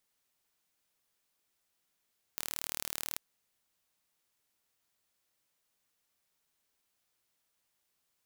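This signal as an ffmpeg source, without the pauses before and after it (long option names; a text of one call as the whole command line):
ffmpeg -f lavfi -i "aevalsrc='0.355*eq(mod(n,1154),0)':duration=0.81:sample_rate=44100" out.wav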